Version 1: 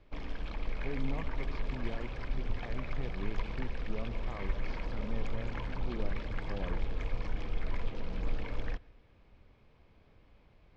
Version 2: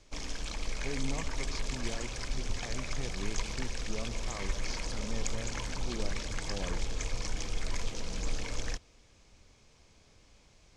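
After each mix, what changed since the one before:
background: send off; master: remove distance through air 430 m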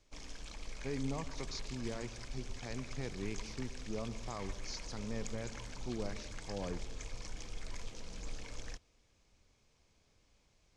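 background -10.0 dB

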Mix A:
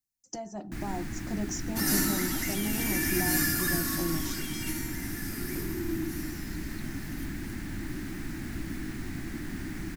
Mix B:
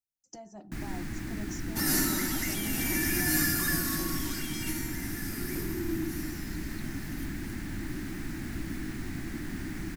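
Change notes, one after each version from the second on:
speech -8.0 dB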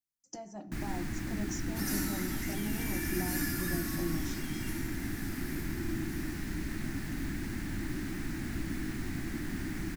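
second sound -11.5 dB; reverb: on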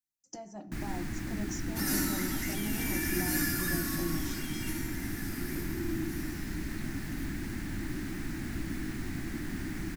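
second sound +4.5 dB

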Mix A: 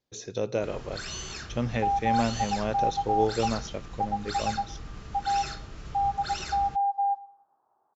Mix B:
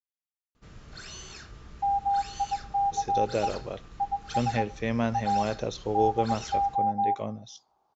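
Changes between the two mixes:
speech: entry +2.80 s; first sound -6.0 dB

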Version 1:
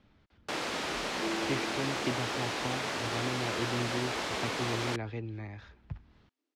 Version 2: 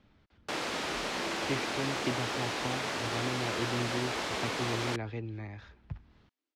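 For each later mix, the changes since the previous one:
second sound -7.0 dB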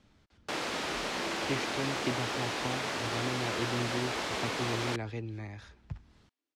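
speech: remove low-pass 3.7 kHz 12 dB/octave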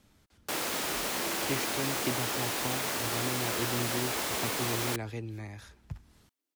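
master: remove low-pass 4.9 kHz 12 dB/octave

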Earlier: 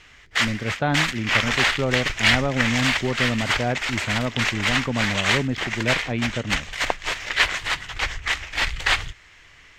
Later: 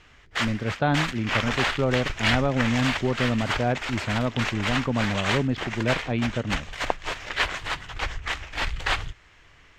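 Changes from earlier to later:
background: add treble shelf 2.3 kHz -8.5 dB; master: add peaking EQ 2 kHz -4 dB 0.47 oct

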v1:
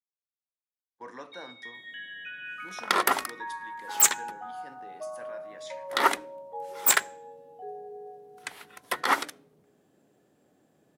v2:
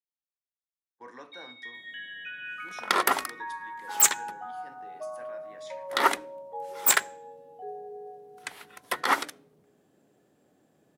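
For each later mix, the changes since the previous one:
speech -5.5 dB; reverb: on, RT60 0.45 s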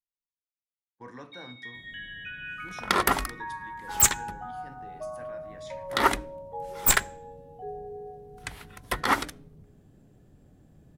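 master: remove high-pass 360 Hz 12 dB/octave

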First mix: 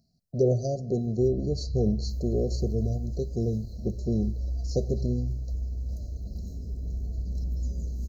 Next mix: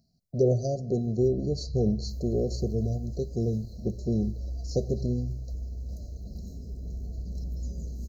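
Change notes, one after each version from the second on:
first sound -4.0 dB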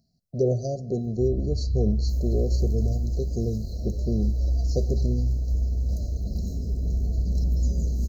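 first sound +11.0 dB; second sound +9.0 dB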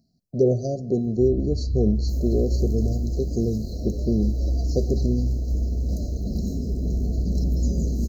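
second sound +3.5 dB; master: add peaking EQ 290 Hz +7.5 dB 1.1 oct

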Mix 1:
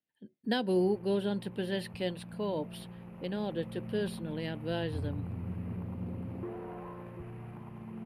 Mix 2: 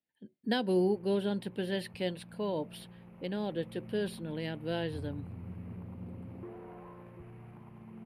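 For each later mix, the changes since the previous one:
background -5.5 dB; master: remove band-stop 2.2 kHz, Q 27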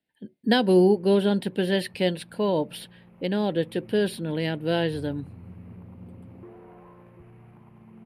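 speech +10.0 dB

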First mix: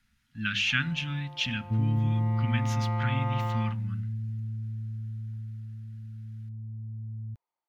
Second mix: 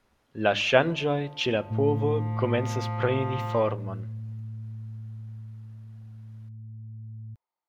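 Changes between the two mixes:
speech: remove inverse Chebyshev band-stop 360–930 Hz, stop band 40 dB; second sound -3.0 dB

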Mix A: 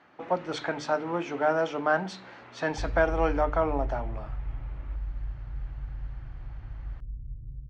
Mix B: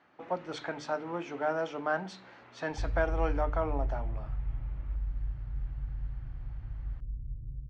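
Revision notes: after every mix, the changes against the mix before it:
speech -6.0 dB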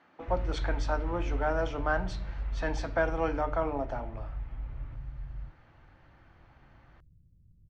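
background: entry -2.50 s; reverb: on, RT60 0.60 s

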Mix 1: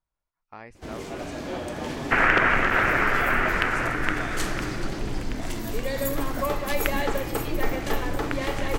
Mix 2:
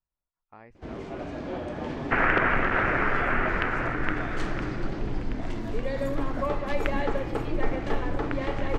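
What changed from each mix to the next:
speech -4.5 dB; master: add tape spacing loss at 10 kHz 24 dB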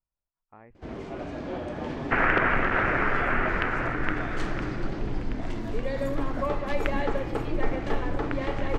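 speech: add distance through air 410 m

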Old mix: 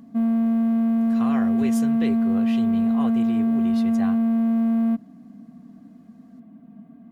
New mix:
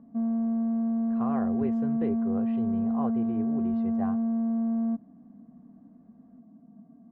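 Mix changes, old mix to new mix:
background -6.0 dB; master: add Chebyshev low-pass 860 Hz, order 2

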